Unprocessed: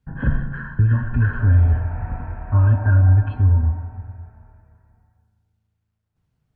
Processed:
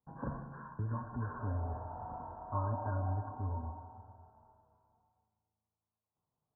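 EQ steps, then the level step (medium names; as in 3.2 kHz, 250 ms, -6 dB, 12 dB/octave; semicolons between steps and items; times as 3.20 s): steep low-pass 1.1 kHz 48 dB/octave; differentiator; +14.5 dB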